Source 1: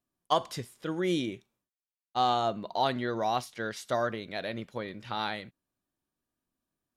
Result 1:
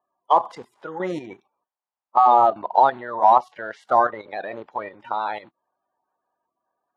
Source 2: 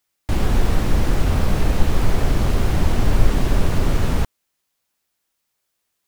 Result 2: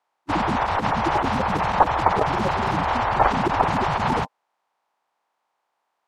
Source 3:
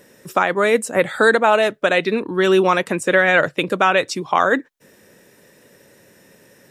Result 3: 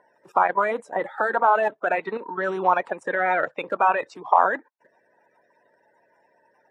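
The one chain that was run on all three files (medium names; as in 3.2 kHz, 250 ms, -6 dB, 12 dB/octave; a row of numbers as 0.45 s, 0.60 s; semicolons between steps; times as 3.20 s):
coarse spectral quantiser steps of 30 dB; level held to a coarse grid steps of 10 dB; band-pass filter 870 Hz, Q 3; peak normalisation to -3 dBFS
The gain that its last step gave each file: +20.5 dB, +21.0 dB, +8.5 dB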